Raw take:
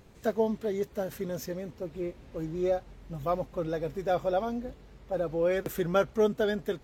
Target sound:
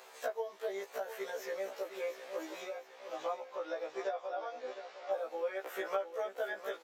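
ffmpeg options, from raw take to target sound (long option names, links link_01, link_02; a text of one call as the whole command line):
ffmpeg -i in.wav -filter_complex "[0:a]highpass=frequency=560:width=0.5412,highpass=frequency=560:width=1.3066,acrossover=split=2600[link_01][link_02];[link_02]acompressor=threshold=-55dB:ratio=4:attack=1:release=60[link_03];[link_01][link_03]amix=inputs=2:normalize=0,asettb=1/sr,asplit=3[link_04][link_05][link_06];[link_04]atrim=end=2.774[link_07];[link_05]atrim=start=2.77:end=5.12,asetpts=PTS-STARTPTS,afade=type=in:duration=0.004:curve=qsin,afade=type=out:start_time=2.346:duration=0.004:curve=qsin,lowpass=frequency=6200:width=0.5412,lowpass=frequency=6200:width=1.3066[link_08];[link_06]atrim=start=5.116[link_09];[link_07][link_08]acrossfade=duration=0.004:curve1=hsin:curve2=qsin[link_10];[link_10][link_09]acrossfade=duration=0.004:curve1=qsin:curve2=hsin,acompressor=threshold=-44dB:ratio=8,aecho=1:1:709|1418|2127|2836:0.282|0.107|0.0407|0.0155,afftfilt=real='re*1.73*eq(mod(b,3),0)':imag='im*1.73*eq(mod(b,3),0)':win_size=2048:overlap=0.75,volume=11.5dB" out.wav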